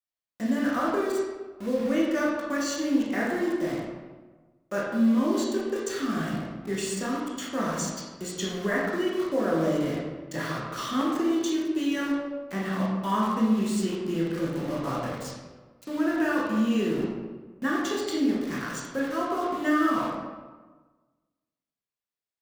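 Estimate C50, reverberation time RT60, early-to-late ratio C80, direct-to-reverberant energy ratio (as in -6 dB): 0.0 dB, 1.3 s, 2.5 dB, -5.0 dB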